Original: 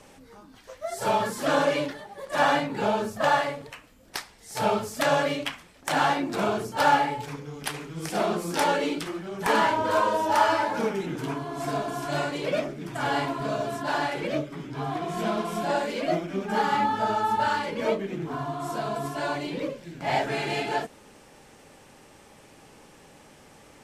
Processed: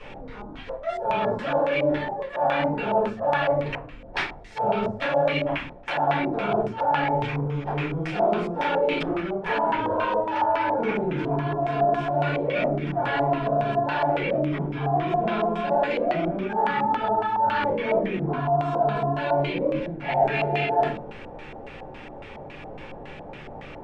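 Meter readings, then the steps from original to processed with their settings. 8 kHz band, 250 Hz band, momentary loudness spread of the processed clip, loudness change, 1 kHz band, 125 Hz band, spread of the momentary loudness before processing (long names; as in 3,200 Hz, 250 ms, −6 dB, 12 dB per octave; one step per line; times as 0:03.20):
below −20 dB, +2.5 dB, 17 LU, +2.0 dB, +1.5 dB, +6.5 dB, 11 LU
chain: rectangular room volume 160 cubic metres, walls furnished, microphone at 4.4 metres
reversed playback
downward compressor 6 to 1, threshold −24 dBFS, peak gain reduction 17.5 dB
reversed playback
auto-filter low-pass square 3.6 Hz 740–2,600 Hz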